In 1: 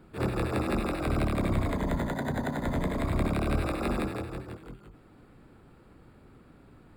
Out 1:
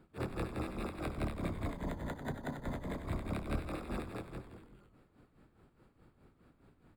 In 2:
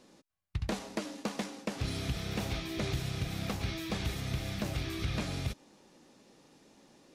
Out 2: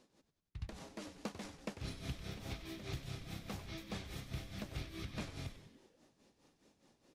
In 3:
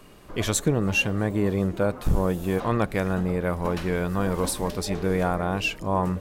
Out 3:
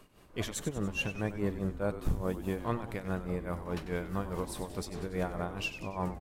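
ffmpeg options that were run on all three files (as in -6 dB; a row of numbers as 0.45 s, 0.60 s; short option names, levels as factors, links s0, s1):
-filter_complex "[0:a]tremolo=f=4.8:d=0.82,asplit=2[s0][s1];[s1]asplit=6[s2][s3][s4][s5][s6][s7];[s2]adelay=95,afreqshift=-120,volume=0.282[s8];[s3]adelay=190,afreqshift=-240,volume=0.16[s9];[s4]adelay=285,afreqshift=-360,volume=0.0912[s10];[s5]adelay=380,afreqshift=-480,volume=0.0525[s11];[s6]adelay=475,afreqshift=-600,volume=0.0299[s12];[s7]adelay=570,afreqshift=-720,volume=0.017[s13];[s8][s9][s10][s11][s12][s13]amix=inputs=6:normalize=0[s14];[s0][s14]amix=inputs=2:normalize=0,volume=0.447"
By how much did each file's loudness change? -10.0 LU, -10.0 LU, -10.5 LU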